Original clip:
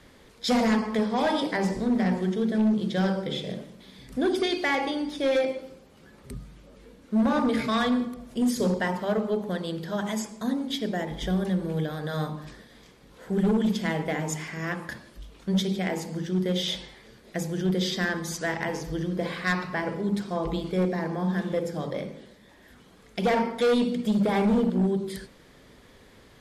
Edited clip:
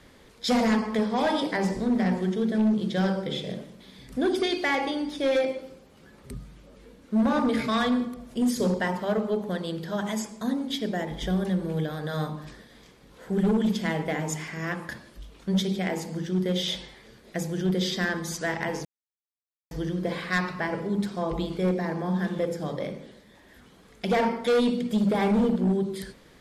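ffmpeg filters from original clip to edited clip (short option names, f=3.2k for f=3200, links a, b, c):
-filter_complex "[0:a]asplit=2[a][b];[a]atrim=end=18.85,asetpts=PTS-STARTPTS,afade=t=out:st=18.846:d=0.004:c=hsin,apad=pad_dur=0.86[c];[b]atrim=start=18.85,asetpts=PTS-STARTPTS,afade=t=in:d=0.004:c=hsin[d];[c][d]concat=n=2:v=0:a=1"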